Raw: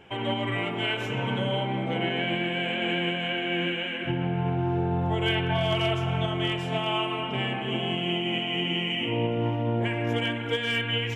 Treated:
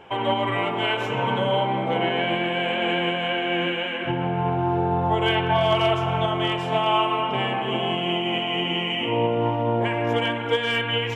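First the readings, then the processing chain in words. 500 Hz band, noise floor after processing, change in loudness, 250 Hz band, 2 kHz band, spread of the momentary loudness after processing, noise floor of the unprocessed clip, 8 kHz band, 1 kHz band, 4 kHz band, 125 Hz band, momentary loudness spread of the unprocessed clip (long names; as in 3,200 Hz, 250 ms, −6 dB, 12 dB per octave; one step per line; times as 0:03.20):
+6.0 dB, −28 dBFS, +4.0 dB, +2.0 dB, +3.0 dB, 4 LU, −32 dBFS, can't be measured, +9.0 dB, +2.5 dB, +0.5 dB, 3 LU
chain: octave-band graphic EQ 500/1,000/4,000 Hz +5/+10/+3 dB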